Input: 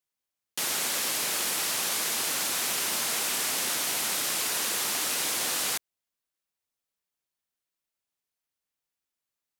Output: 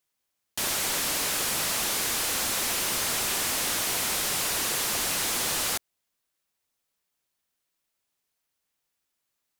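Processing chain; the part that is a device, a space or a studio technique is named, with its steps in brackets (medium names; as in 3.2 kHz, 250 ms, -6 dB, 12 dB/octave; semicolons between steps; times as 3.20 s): saturation between pre-emphasis and de-emphasis (treble shelf 2 kHz +12 dB; saturation -22 dBFS, distortion -9 dB; treble shelf 2 kHz -12 dB); trim +7 dB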